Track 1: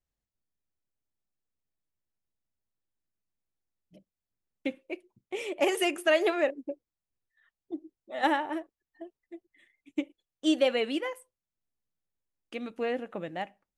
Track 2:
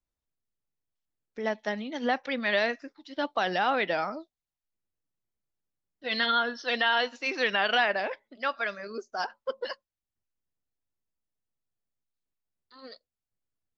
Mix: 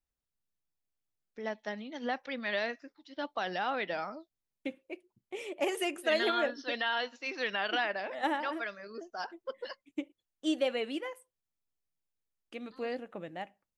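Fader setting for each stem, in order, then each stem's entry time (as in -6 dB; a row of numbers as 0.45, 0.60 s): -5.5, -7.0 dB; 0.00, 0.00 s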